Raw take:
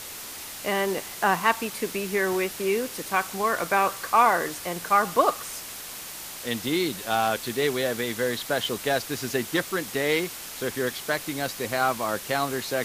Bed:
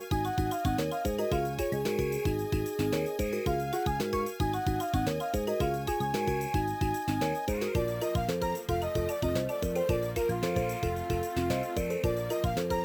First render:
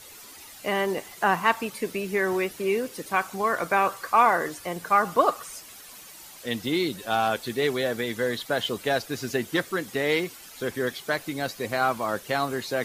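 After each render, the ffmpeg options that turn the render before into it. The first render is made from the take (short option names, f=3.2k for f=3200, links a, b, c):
-af "afftdn=nr=11:nf=-39"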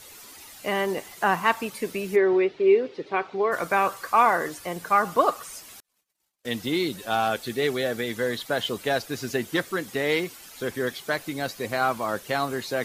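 -filter_complex "[0:a]asplit=3[a][b][c];[a]afade=t=out:st=2.15:d=0.02[d];[b]highpass=120,equalizer=f=210:t=q:w=4:g=-7,equalizer=f=400:t=q:w=4:g=9,equalizer=f=1.1k:t=q:w=4:g=-4,equalizer=f=1.6k:t=q:w=4:g=-5,equalizer=f=2.9k:t=q:w=4:g=-3,lowpass=f=3.8k:w=0.5412,lowpass=f=3.8k:w=1.3066,afade=t=in:st=2.15:d=0.02,afade=t=out:st=3.51:d=0.02[e];[c]afade=t=in:st=3.51:d=0.02[f];[d][e][f]amix=inputs=3:normalize=0,asettb=1/sr,asplit=3[g][h][i];[g]atrim=end=5.804[j];[h]atrim=start=5.8:end=6.58,asetpts=PTS-STARTPTS,afade=t=in:d=0.004:c=qsin,afade=t=out:st=0.776:d=0.004:c=qsin,agate=range=-42dB:threshold=-42dB:ratio=16:release=100:detection=peak[k];[i]atrim=start=6.576[l];[j][k]acrossfade=d=0.004:c1=hsin:c2=qsin[m];[m][l]acrossfade=d=0.004:c1=qsin:c2=hsin,asettb=1/sr,asplit=3[n][o][p];[n]atrim=end=7.244[q];[o]atrim=start=7.24:end=8.09,asetpts=PTS-STARTPTS,afade=t=in:d=0.004:c=qsin,afade=t=out:st=0.846:d=0.004:c=qsin,bandreject=f=990:w=9.1[r];[p]atrim=start=8.086[s];[q][r]acrossfade=d=0.004:c1=hsin:c2=qsin[t];[t][s]acrossfade=d=0.004:c1=qsin:c2=hsin"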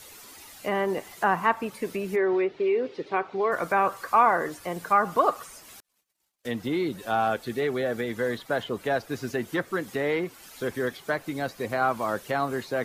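-filter_complex "[0:a]acrossover=split=660|2000[a][b][c];[a]alimiter=limit=-21dB:level=0:latency=1[d];[c]acompressor=threshold=-44dB:ratio=6[e];[d][b][e]amix=inputs=3:normalize=0"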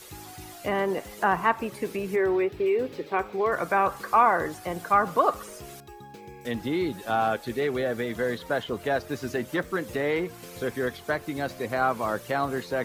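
-filter_complex "[1:a]volume=-15dB[a];[0:a][a]amix=inputs=2:normalize=0"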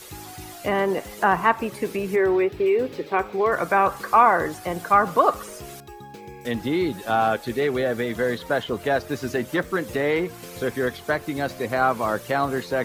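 -af "volume=4dB"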